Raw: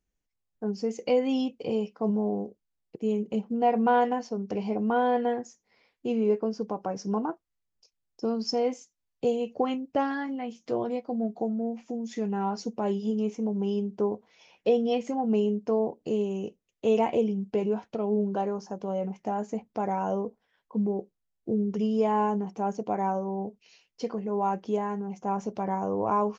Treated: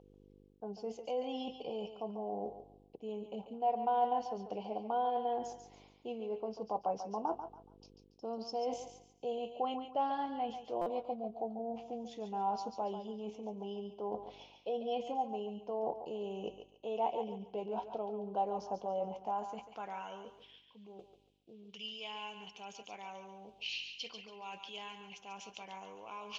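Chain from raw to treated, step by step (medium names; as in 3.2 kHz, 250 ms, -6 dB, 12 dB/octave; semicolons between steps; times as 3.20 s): peaking EQ 130 Hz +6.5 dB 1.4 oct; mains buzz 50 Hz, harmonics 10, -48 dBFS -8 dB/octave; reverse; compression 8:1, threshold -37 dBFS, peak gain reduction 19 dB; reverse; band-pass sweep 780 Hz -> 2.5 kHz, 19.06–20.40 s; resonant high shelf 2.4 kHz +9 dB, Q 3; on a send: thinning echo 141 ms, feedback 32%, high-pass 530 Hz, level -7.5 dB; on the sum: buffer glitch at 10.81 s, samples 256, times 8; trim +11.5 dB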